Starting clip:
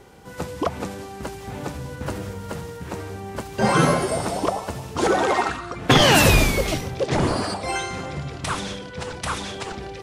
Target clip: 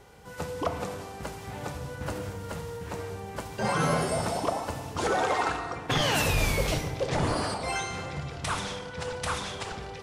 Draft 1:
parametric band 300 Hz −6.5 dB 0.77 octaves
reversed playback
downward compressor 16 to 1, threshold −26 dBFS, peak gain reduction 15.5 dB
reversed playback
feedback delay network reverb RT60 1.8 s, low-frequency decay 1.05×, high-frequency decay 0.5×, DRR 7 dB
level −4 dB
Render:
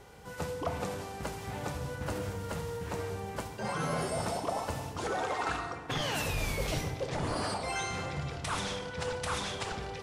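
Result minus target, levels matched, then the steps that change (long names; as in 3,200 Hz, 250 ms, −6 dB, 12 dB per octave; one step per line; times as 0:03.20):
downward compressor: peak gain reduction +7.5 dB
change: downward compressor 16 to 1, threshold −18 dBFS, peak gain reduction 8 dB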